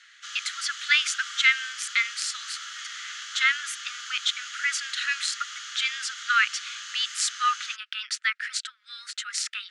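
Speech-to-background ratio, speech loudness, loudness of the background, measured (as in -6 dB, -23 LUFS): 10.0 dB, -26.5 LUFS, -36.5 LUFS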